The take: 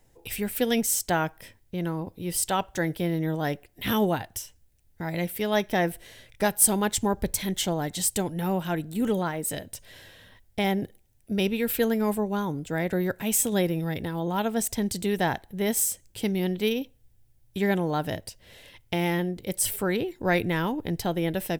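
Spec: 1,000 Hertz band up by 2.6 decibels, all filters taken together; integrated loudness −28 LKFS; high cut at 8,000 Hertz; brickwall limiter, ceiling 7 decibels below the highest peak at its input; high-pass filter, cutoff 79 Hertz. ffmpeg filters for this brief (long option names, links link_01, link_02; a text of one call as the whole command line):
ffmpeg -i in.wav -af "highpass=79,lowpass=8000,equalizer=frequency=1000:width_type=o:gain=3.5,volume=1dB,alimiter=limit=-16dB:level=0:latency=1" out.wav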